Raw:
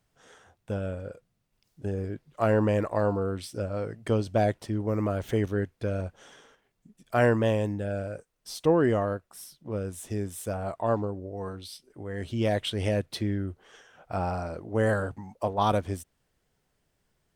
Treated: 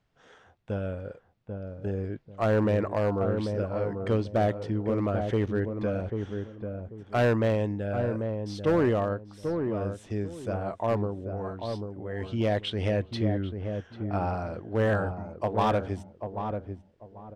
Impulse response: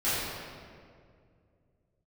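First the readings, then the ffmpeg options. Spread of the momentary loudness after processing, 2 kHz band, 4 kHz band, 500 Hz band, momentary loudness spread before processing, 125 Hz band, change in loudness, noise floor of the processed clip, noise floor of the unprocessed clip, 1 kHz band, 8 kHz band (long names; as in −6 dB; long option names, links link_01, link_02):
11 LU, −1.0 dB, −1.5 dB, +0.5 dB, 14 LU, +1.0 dB, −0.5 dB, −60 dBFS, −75 dBFS, −0.5 dB, below −10 dB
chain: -filter_complex "[0:a]lowpass=4100,asoftclip=type=hard:threshold=-18.5dB,asplit=2[link_01][link_02];[link_02]adelay=791,lowpass=frequency=820:poles=1,volume=-5dB,asplit=2[link_03][link_04];[link_04]adelay=791,lowpass=frequency=820:poles=1,volume=0.28,asplit=2[link_05][link_06];[link_06]adelay=791,lowpass=frequency=820:poles=1,volume=0.28,asplit=2[link_07][link_08];[link_08]adelay=791,lowpass=frequency=820:poles=1,volume=0.28[link_09];[link_01][link_03][link_05][link_07][link_09]amix=inputs=5:normalize=0"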